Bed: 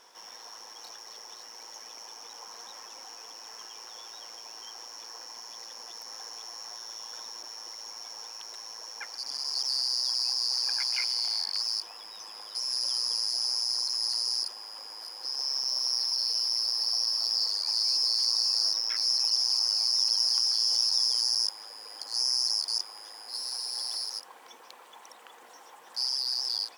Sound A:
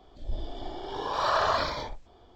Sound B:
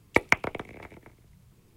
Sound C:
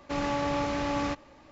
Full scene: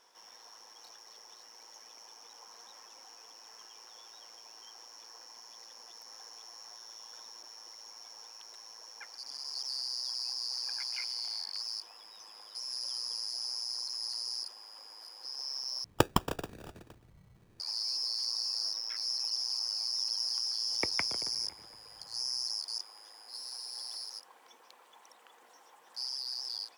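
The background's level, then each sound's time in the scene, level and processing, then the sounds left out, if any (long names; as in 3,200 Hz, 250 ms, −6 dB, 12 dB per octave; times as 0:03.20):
bed −8 dB
0:15.84: overwrite with B −3 dB + decimation without filtering 21×
0:20.67: mix in B −14 dB
not used: A, C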